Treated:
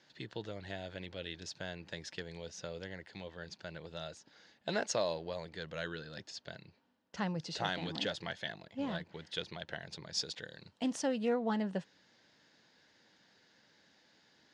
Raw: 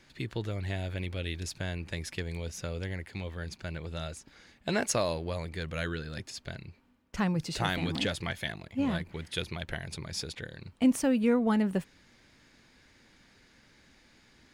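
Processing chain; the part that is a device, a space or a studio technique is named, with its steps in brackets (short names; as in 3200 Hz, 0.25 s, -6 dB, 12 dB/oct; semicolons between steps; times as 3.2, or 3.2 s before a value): full-range speaker at full volume (Doppler distortion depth 0.12 ms; speaker cabinet 210–6200 Hz, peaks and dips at 250 Hz -7 dB, 370 Hz -5 dB, 1200 Hz -6 dB, 2300 Hz -9 dB); 10.14–11.28 high shelf 4800 Hz -> 8000 Hz +10 dB; gain -2.5 dB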